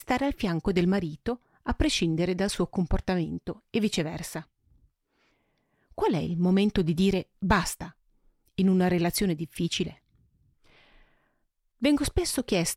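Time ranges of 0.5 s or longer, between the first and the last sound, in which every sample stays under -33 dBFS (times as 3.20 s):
4.40–5.98 s
7.86–8.58 s
9.90–11.82 s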